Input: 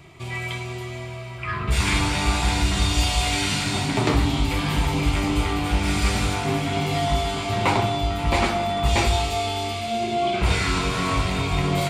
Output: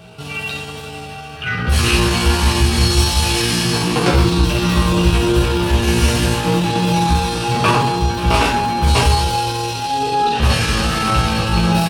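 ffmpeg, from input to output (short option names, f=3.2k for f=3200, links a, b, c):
-af "aecho=1:1:20|48|87.2|142.1|218.9:0.631|0.398|0.251|0.158|0.1,aeval=exprs='val(0)+0.00316*sin(2*PI*540*n/s)':c=same,asetrate=52444,aresample=44100,atempo=0.840896,volume=4dB"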